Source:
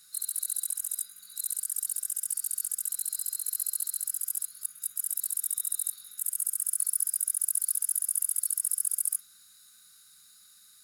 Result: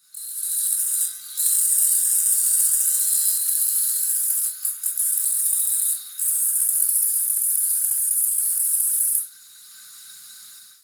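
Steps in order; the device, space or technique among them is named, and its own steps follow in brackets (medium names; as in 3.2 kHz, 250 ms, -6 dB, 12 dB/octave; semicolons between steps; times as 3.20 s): far-field microphone of a smart speaker (reverberation RT60 0.30 s, pre-delay 15 ms, DRR -3 dB; high-pass 140 Hz 6 dB/octave; level rider gain up to 15.5 dB; trim -3 dB; Opus 16 kbps 48 kHz)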